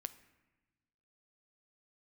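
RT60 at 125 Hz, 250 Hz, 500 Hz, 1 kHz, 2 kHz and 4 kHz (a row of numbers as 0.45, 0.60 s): 1.7, 1.6, 1.2, 1.1, 1.2, 0.80 s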